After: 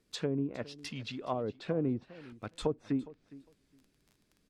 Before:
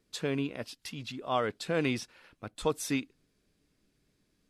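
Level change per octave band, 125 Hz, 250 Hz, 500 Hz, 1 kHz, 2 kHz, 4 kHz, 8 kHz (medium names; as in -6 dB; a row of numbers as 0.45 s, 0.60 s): 0.0 dB, -0.5 dB, -2.5 dB, -6.0 dB, -10.0 dB, -5.0 dB, -10.5 dB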